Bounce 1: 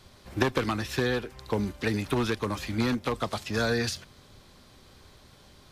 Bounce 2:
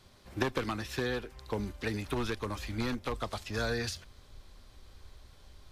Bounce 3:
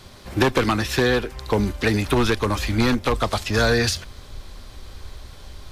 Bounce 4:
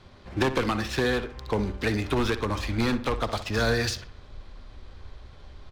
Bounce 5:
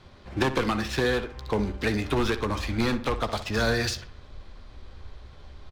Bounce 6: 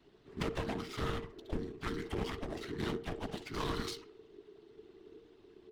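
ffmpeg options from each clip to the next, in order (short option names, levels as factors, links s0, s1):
-af "asubboost=boost=7:cutoff=61,volume=0.531"
-af "aeval=exprs='0.133*sin(PI/2*1.58*val(0)/0.133)':c=same,volume=2.24"
-filter_complex "[0:a]adynamicsmooth=sensitivity=7:basefreq=3400,asplit=2[s0][s1];[s1]adelay=61,lowpass=f=3300:p=1,volume=0.251,asplit=2[s2][s3];[s3]adelay=61,lowpass=f=3300:p=1,volume=0.46,asplit=2[s4][s5];[s5]adelay=61,lowpass=f=3300:p=1,volume=0.46,asplit=2[s6][s7];[s7]adelay=61,lowpass=f=3300:p=1,volume=0.46,asplit=2[s8][s9];[s9]adelay=61,lowpass=f=3300:p=1,volume=0.46[s10];[s0][s2][s4][s6][s8][s10]amix=inputs=6:normalize=0,volume=0.501"
-filter_complex "[0:a]asplit=2[s0][s1];[s1]adelay=14,volume=0.224[s2];[s0][s2]amix=inputs=2:normalize=0"
-af "afftfilt=real='hypot(re,im)*cos(2*PI*random(0))':imag='hypot(re,im)*sin(2*PI*random(1))':win_size=512:overlap=0.75,aeval=exprs='0.168*(cos(1*acos(clip(val(0)/0.168,-1,1)))-cos(1*PI/2))+0.0473*(cos(4*acos(clip(val(0)/0.168,-1,1)))-cos(4*PI/2))':c=same,afreqshift=-460,volume=0.447"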